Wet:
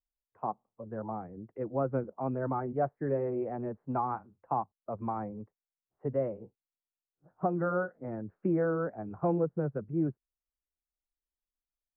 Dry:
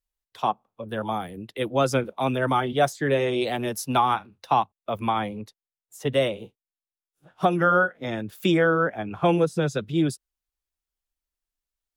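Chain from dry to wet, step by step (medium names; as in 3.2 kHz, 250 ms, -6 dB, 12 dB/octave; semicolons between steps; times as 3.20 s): Gaussian low-pass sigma 7.2 samples; trim -7 dB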